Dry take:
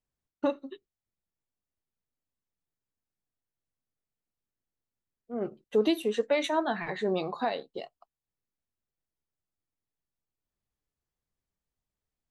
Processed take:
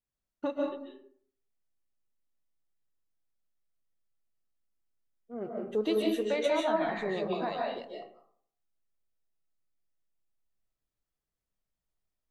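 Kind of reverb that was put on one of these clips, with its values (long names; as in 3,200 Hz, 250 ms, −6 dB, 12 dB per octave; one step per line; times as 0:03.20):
comb and all-pass reverb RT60 0.59 s, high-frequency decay 0.5×, pre-delay 105 ms, DRR −2 dB
level −5.5 dB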